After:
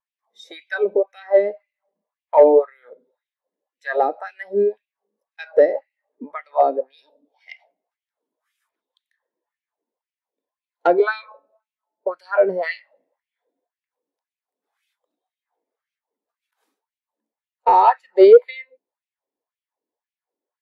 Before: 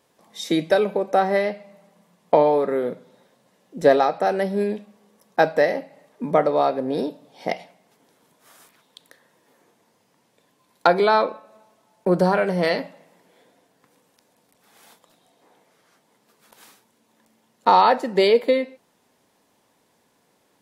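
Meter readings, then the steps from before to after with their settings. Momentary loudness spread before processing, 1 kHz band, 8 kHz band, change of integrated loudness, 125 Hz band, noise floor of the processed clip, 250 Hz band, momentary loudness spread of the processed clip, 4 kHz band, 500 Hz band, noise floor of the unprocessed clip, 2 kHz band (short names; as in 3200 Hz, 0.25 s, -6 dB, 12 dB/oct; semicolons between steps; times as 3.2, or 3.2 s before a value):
14 LU, 0.0 dB, n/a, +3.0 dB, under -15 dB, under -85 dBFS, -3.0 dB, 20 LU, -10.5 dB, +3.0 dB, -65 dBFS, -1.5 dB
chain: LFO high-pass sine 1.9 Hz 280–2600 Hz; overloaded stage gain 7 dB; spectral expander 1.5:1; gain +6 dB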